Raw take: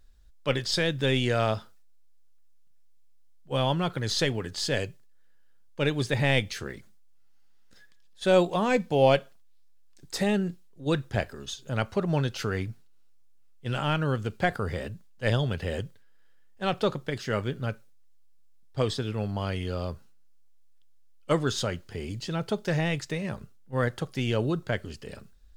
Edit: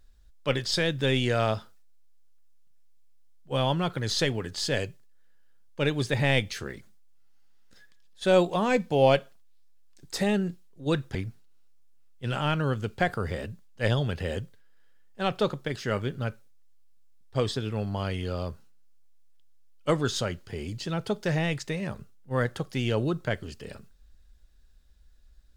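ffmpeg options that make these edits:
-filter_complex "[0:a]asplit=2[s0][s1];[s0]atrim=end=11.152[s2];[s1]atrim=start=12.568[s3];[s2][s3]acrossfade=d=0.004:c1=hsin:c2=hsin"

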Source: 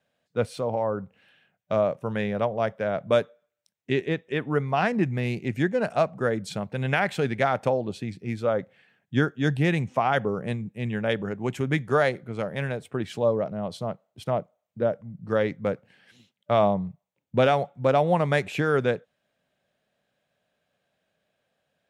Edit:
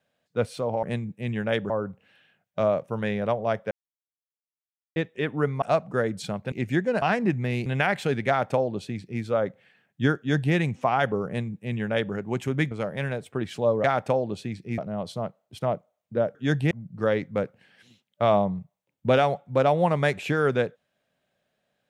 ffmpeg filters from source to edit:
-filter_complex "[0:a]asplit=14[s0][s1][s2][s3][s4][s5][s6][s7][s8][s9][s10][s11][s12][s13];[s0]atrim=end=0.832[s14];[s1]atrim=start=10.398:end=11.272[s15];[s2]atrim=start=0.828:end=2.84,asetpts=PTS-STARTPTS,afade=t=out:st=2.008:d=0.004:c=hsin[s16];[s3]atrim=start=2.84:end=4.09,asetpts=PTS-STARTPTS,volume=0[s17];[s4]atrim=start=4.09:end=4.752,asetpts=PTS-STARTPTS,afade=t=in:d=0.004:c=hsin[s18];[s5]atrim=start=5.888:end=6.792[s19];[s6]atrim=start=5.388:end=5.892[s20];[s7]atrim=start=4.748:end=5.392[s21];[s8]atrim=start=6.788:end=11.842[s22];[s9]atrim=start=12.298:end=13.432[s23];[s10]atrim=start=7.408:end=8.352[s24];[s11]atrim=start=13.428:end=15.002[s25];[s12]atrim=start=9.308:end=9.672[s26];[s13]atrim=start=14.998[s27];[s14][s15]acrossfade=d=0.004:c1=hsin:c2=hsin[s28];[s16][s17][s18]concat=n=3:v=0:a=1[s29];[s28][s29]acrossfade=d=0.004:c1=hsin:c2=hsin[s30];[s30][s19]acrossfade=d=0.004:c1=hsin:c2=hsin[s31];[s31][s20]acrossfade=d=0.004:c1=hsin:c2=hsin[s32];[s32][s21]acrossfade=d=0.004:c1=hsin:c2=hsin[s33];[s33][s22]acrossfade=d=0.004:c1=hsin:c2=hsin[s34];[s34][s23]acrossfade=d=0.004:c1=hsin:c2=hsin[s35];[s35][s24]acrossfade=d=0.004:c1=hsin:c2=hsin[s36];[s36][s25]acrossfade=d=0.004:c1=hsin:c2=hsin[s37];[s37][s26]acrossfade=d=0.004:c1=hsin:c2=hsin[s38];[s38][s27]acrossfade=d=0.004:c1=hsin:c2=hsin"

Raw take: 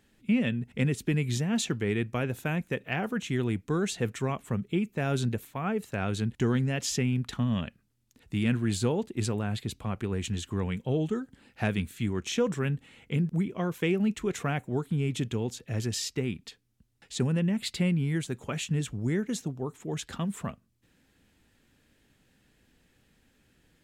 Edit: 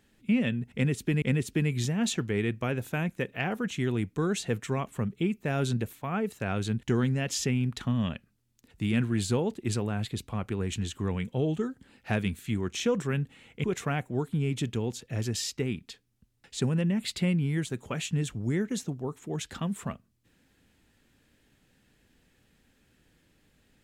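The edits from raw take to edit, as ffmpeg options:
-filter_complex "[0:a]asplit=3[s0][s1][s2];[s0]atrim=end=1.222[s3];[s1]atrim=start=0.738:end=13.162[s4];[s2]atrim=start=14.218[s5];[s3][s4]acrossfade=d=0.004:c1=hsin:c2=hsin[s6];[s6][s5]acrossfade=d=0.004:c1=hsin:c2=hsin"

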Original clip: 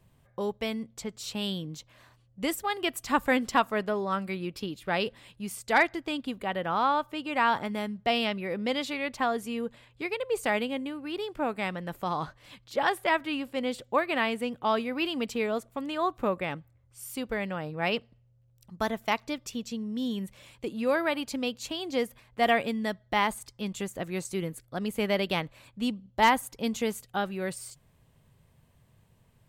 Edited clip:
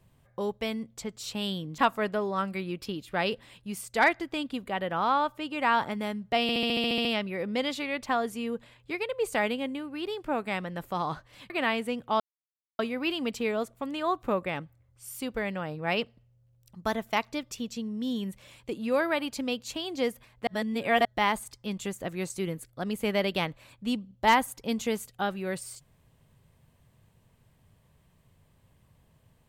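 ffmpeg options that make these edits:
-filter_complex "[0:a]asplit=15[s0][s1][s2][s3][s4][s5][s6][s7][s8][s9][s10][s11][s12][s13][s14];[s0]atrim=end=1.782[s15];[s1]atrim=start=3.518:end=8.232[s16];[s2]atrim=start=8.158:end=8.232[s17];[s3]atrim=start=8.158:end=8.232[s18];[s4]atrim=start=8.158:end=8.232[s19];[s5]atrim=start=8.158:end=8.232[s20];[s6]atrim=start=8.158:end=8.232[s21];[s7]atrim=start=8.158:end=8.232[s22];[s8]atrim=start=8.158:end=8.232[s23];[s9]atrim=start=8.158:end=8.232[s24];[s10]atrim=start=8.158:end=12.612[s25];[s11]atrim=start=14.038:end=14.74,asetpts=PTS-STARTPTS,afade=t=out:st=0.698:d=0.004:c=hsin,apad=pad_dur=0.59[s26];[s12]atrim=start=14.74:end=22.422,asetpts=PTS-STARTPTS,afade=t=in:d=0.004:c=hsin[s27];[s13]atrim=start=22.418:end=23.002,asetpts=PTS-STARTPTS,areverse[s28];[s14]atrim=start=22.998[s29];[s15][s16]acrossfade=d=0.004:c1=hsin:c2=hsin[s30];[s30][s17]acrossfade=d=0.004:c1=hsin:c2=hsin[s31];[s31][s18]acrossfade=d=0.004:c1=hsin:c2=hsin[s32];[s32][s19]acrossfade=d=0.004:c1=hsin:c2=hsin[s33];[s33][s20]acrossfade=d=0.004:c1=hsin:c2=hsin[s34];[s34][s21]acrossfade=d=0.004:c1=hsin:c2=hsin[s35];[s35][s22]acrossfade=d=0.004:c1=hsin:c2=hsin[s36];[s36][s23]acrossfade=d=0.004:c1=hsin:c2=hsin[s37];[s37][s24]acrossfade=d=0.004:c1=hsin:c2=hsin[s38];[s38][s25]acrossfade=d=0.004:c1=hsin:c2=hsin[s39];[s26][s27]concat=n=2:v=0:a=1[s40];[s39][s40]acrossfade=d=0.004:c1=hsin:c2=hsin[s41];[s41][s28]acrossfade=d=0.004:c1=hsin:c2=hsin[s42];[s42][s29]acrossfade=d=0.004:c1=hsin:c2=hsin"

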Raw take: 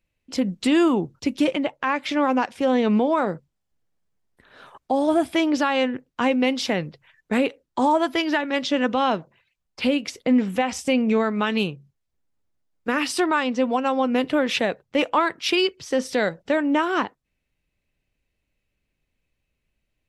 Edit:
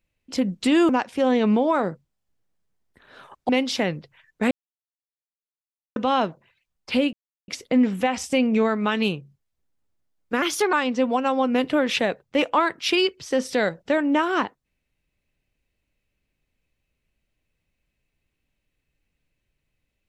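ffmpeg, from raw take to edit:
-filter_complex "[0:a]asplit=8[s0][s1][s2][s3][s4][s5][s6][s7];[s0]atrim=end=0.892[s8];[s1]atrim=start=2.318:end=4.922[s9];[s2]atrim=start=6.388:end=7.41,asetpts=PTS-STARTPTS,afade=t=out:st=1.018:d=0.004:c=hsin[s10];[s3]atrim=start=7.41:end=8.86,asetpts=PTS-STARTPTS,volume=0[s11];[s4]atrim=start=8.86:end=10.03,asetpts=PTS-STARTPTS,afade=t=in:d=0.004:c=hsin,afade=t=out:st=1.166:d=0.004:c=hsin,apad=pad_dur=0.35[s12];[s5]atrim=start=10.03:end=12.974,asetpts=PTS-STARTPTS,afade=t=in:d=0.004:c=hsin[s13];[s6]atrim=start=12.97:end=13.33,asetpts=PTS-STARTPTS,asetrate=51156,aresample=44100,atrim=end_sample=13686,asetpts=PTS-STARTPTS[s14];[s7]atrim=start=13.326[s15];[s8][s9]acrossfade=d=0.004:c1=hsin:c2=hsin[s16];[s10][s11][s12][s13]concat=n=4:v=0:a=1[s17];[s16][s17]acrossfade=d=0.004:c1=hsin:c2=hsin[s18];[s18][s14]acrossfade=d=0.004:c1=hsin:c2=hsin[s19];[s19][s15]acrossfade=d=0.004:c1=hsin:c2=hsin"

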